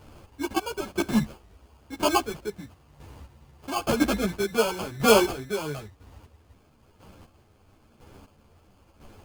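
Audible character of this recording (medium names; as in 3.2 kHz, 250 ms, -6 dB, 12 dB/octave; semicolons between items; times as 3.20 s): chopped level 1 Hz, depth 65%, duty 25%; aliases and images of a low sample rate 1.9 kHz, jitter 0%; a shimmering, thickened sound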